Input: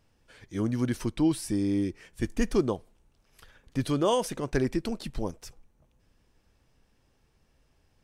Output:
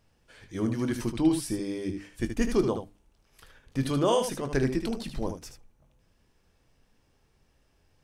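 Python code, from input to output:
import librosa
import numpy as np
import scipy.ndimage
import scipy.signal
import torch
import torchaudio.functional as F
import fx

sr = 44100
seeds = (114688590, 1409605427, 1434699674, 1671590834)

y = fx.hum_notches(x, sr, base_hz=50, count=6)
y = fx.room_early_taps(y, sr, ms=(22, 77), db=(-11.5, -7.5))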